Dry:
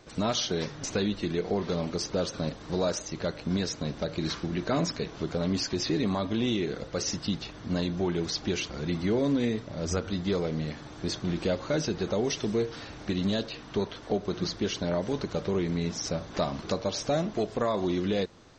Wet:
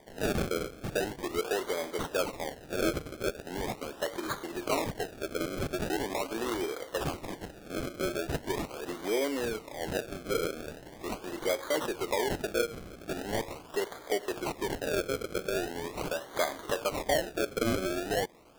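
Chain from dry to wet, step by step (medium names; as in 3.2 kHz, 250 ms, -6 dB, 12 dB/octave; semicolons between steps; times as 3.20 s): high-pass 350 Hz 24 dB/octave; decimation with a swept rate 32×, swing 100% 0.41 Hz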